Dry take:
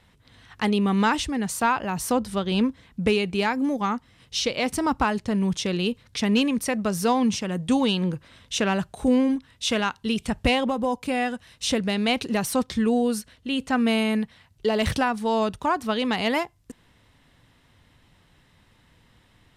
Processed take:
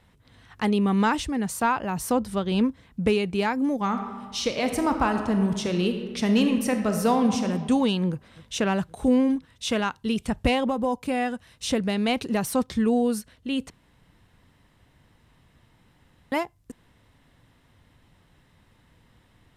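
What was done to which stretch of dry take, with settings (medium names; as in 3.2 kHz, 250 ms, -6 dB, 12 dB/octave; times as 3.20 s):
3.80–7.45 s: reverb throw, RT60 1.5 s, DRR 5.5 dB
8.10–8.53 s: echo throw 260 ms, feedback 70%, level -17 dB
13.70–16.32 s: room tone
whole clip: peaking EQ 4 kHz -4.5 dB 2.6 oct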